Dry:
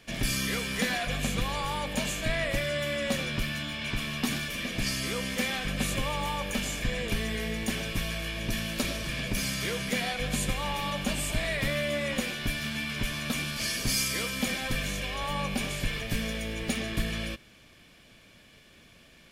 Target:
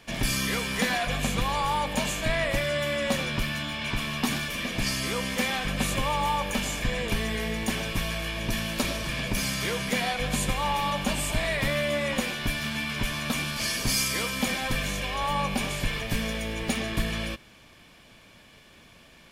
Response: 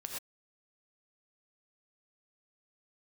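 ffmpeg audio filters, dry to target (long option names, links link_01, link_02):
-af "equalizer=frequency=930:width_type=o:width=0.67:gain=6.5,volume=2dB"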